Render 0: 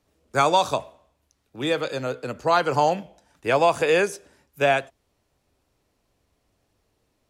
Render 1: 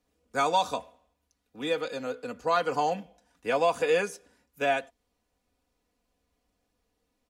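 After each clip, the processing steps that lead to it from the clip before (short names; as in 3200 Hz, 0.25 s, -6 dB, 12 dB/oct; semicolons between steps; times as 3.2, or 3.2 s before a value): comb 4.1 ms, depth 67%; gain -8 dB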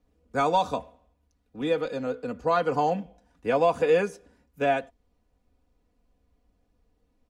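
tilt -2.5 dB/oct; gain +1 dB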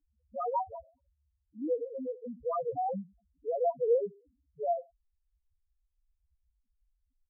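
loudest bins only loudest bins 1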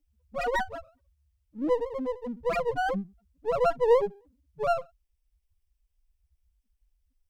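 minimum comb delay 0.37 ms; gain +6.5 dB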